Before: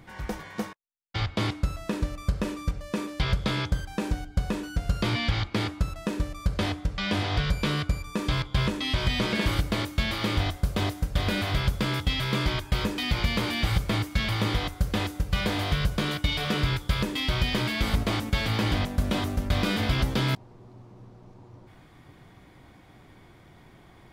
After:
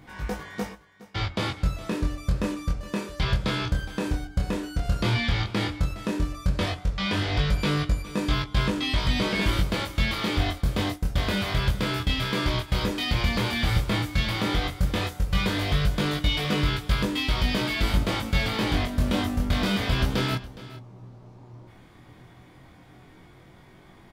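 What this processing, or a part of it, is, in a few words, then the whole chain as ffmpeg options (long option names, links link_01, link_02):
double-tracked vocal: -filter_complex "[0:a]asettb=1/sr,asplit=3[link_01][link_02][link_03];[link_01]atrim=end=10.584[link_04];[link_02]atrim=start=10.58:end=12.68,asetpts=PTS-STARTPTS,afade=type=in:duration=0.004:curve=qsin,afade=type=out:start_time=2.096:duration=0.004:curve=qsin,agate=range=-11dB:threshold=-31dB:ratio=16:detection=peak[link_05];[link_03]atrim=start=12.676[link_06];[link_04][link_05]acrossfade=duration=0.004:curve1=hsin:curve2=qsin[link_07];[link_07][link_06]acrossfade=duration=0.004:curve1=qsin:curve2=hsin,asplit=2[link_08][link_09];[link_09]adelay=16,volume=-12dB[link_10];[link_08][link_10]amix=inputs=2:normalize=0,flanger=delay=20:depth=6.2:speed=0.12,aecho=1:1:415:0.133,volume=4dB"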